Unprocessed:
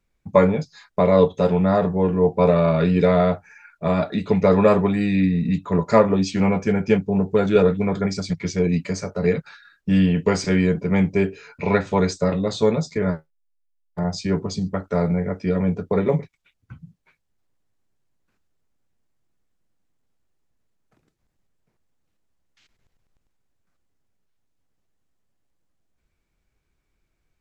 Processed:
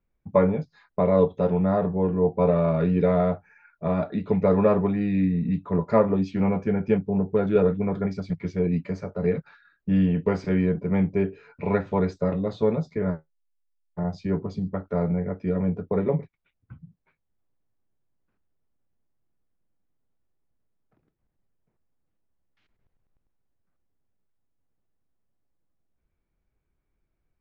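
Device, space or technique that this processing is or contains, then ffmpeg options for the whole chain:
phone in a pocket: -af "lowpass=4000,highshelf=f=2100:g=-12,volume=0.668"

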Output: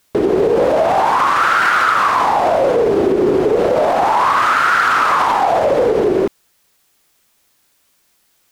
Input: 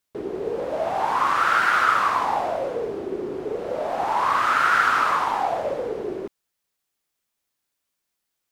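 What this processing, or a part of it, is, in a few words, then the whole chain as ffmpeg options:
loud club master: -af "acompressor=threshold=0.0562:ratio=2,asoftclip=type=hard:threshold=0.141,alimiter=level_in=18.8:limit=0.891:release=50:level=0:latency=1,volume=0.531"

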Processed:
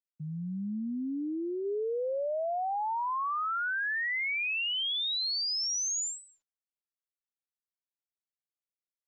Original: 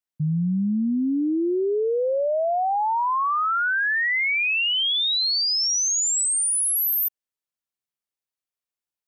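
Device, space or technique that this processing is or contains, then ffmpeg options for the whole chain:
Bluetooth headset: -filter_complex "[0:a]asplit=3[s0][s1][s2];[s0]afade=t=out:st=0.78:d=0.02[s3];[s1]adynamicequalizer=threshold=0.0126:dfrequency=710:dqfactor=0.85:tfrequency=710:tqfactor=0.85:attack=5:release=100:ratio=0.375:range=2.5:mode=cutabove:tftype=bell,afade=t=in:st=0.78:d=0.02,afade=t=out:st=1.64:d=0.02[s4];[s2]afade=t=in:st=1.64:d=0.02[s5];[s3][s4][s5]amix=inputs=3:normalize=0,highpass=200,aresample=16000,aresample=44100,volume=0.355" -ar 16000 -c:a sbc -b:a 64k

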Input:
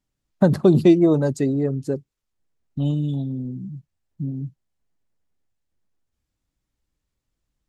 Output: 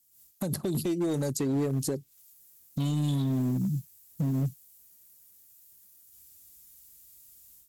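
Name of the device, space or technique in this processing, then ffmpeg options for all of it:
FM broadcast chain: -filter_complex "[0:a]highpass=44,dynaudnorm=f=110:g=3:m=4.47,acrossover=split=830|1800|4600[s0][s1][s2][s3];[s0]acompressor=threshold=0.178:ratio=4[s4];[s1]acompressor=threshold=0.00891:ratio=4[s5];[s2]acompressor=threshold=0.00355:ratio=4[s6];[s3]acompressor=threshold=0.00112:ratio=4[s7];[s4][s5][s6][s7]amix=inputs=4:normalize=0,aemphasis=mode=production:type=75fm,alimiter=limit=0.224:level=0:latency=1:release=155,asoftclip=type=hard:threshold=0.15,lowpass=f=15000:w=0.5412,lowpass=f=15000:w=1.3066,aemphasis=mode=production:type=75fm,volume=0.501"

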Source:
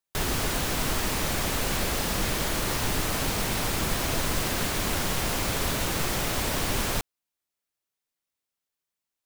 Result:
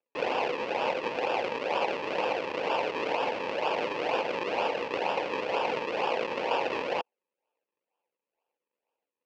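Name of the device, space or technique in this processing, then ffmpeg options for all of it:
circuit-bent sampling toy: -af "acrusher=samples=42:mix=1:aa=0.000001:lfo=1:lforange=42:lforate=2.1,highpass=500,equalizer=f=500:t=q:w=4:g=9,equalizer=f=880:t=q:w=4:g=8,equalizer=f=1300:t=q:w=4:g=-5,equalizer=f=2600:t=q:w=4:g=9,equalizer=f=3700:t=q:w=4:g=-5,lowpass=f=4500:w=0.5412,lowpass=f=4500:w=1.3066"

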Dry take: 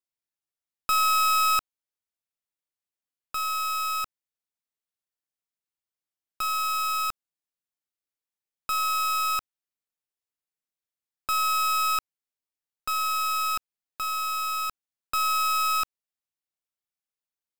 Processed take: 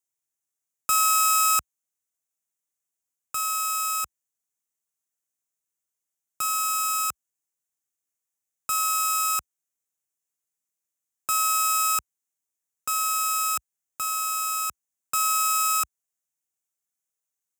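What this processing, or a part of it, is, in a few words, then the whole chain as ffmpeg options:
budget condenser microphone: -af "highpass=f=60:w=0.5412,highpass=f=60:w=1.3066,highshelf=f=5500:t=q:w=3:g=6.5"

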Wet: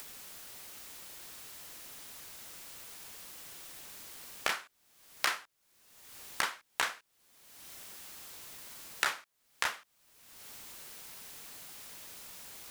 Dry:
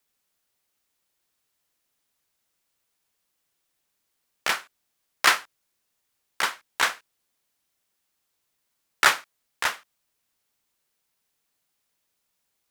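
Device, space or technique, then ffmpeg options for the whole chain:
upward and downward compression: -af "acompressor=mode=upward:threshold=0.01:ratio=2.5,acompressor=threshold=0.01:ratio=5,volume=2.66"

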